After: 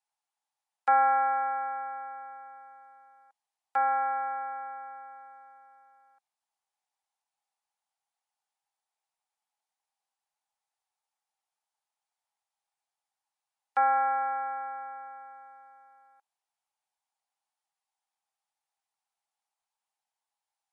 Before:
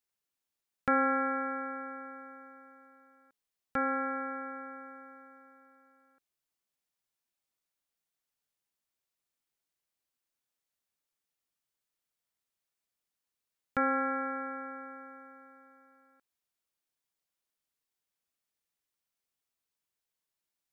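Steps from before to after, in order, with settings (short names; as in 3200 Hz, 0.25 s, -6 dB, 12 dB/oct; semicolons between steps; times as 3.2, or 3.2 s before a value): resonant high-pass 810 Hz, resonance Q 7.7; gain -2.5 dB; MP3 48 kbps 32000 Hz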